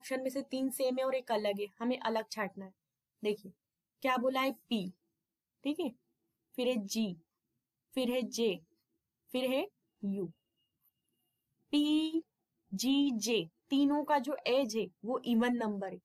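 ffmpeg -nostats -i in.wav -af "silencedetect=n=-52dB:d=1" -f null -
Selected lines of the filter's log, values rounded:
silence_start: 10.31
silence_end: 11.73 | silence_duration: 1.42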